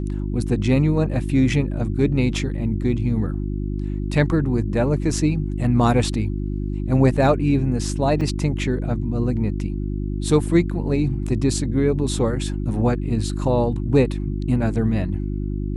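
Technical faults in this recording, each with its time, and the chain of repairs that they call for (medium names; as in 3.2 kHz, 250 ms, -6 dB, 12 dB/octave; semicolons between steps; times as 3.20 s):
hum 50 Hz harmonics 7 -25 dBFS
8.21 s: dropout 4.6 ms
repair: de-hum 50 Hz, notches 7; interpolate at 8.21 s, 4.6 ms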